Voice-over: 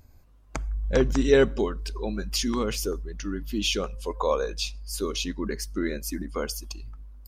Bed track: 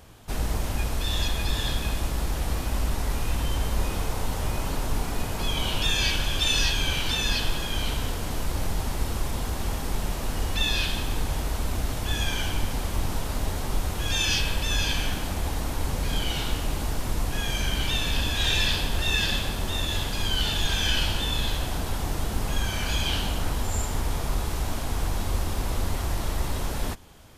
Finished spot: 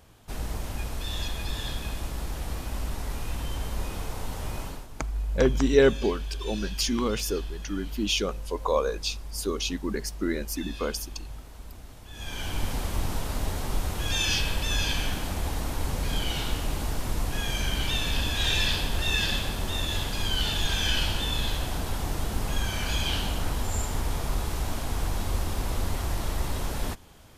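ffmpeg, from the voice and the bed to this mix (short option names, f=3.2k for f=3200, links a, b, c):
-filter_complex "[0:a]adelay=4450,volume=0dB[a];[1:a]volume=10.5dB,afade=t=out:st=4.61:d=0.26:silence=0.251189,afade=t=in:st=12.12:d=0.55:silence=0.158489[b];[a][b]amix=inputs=2:normalize=0"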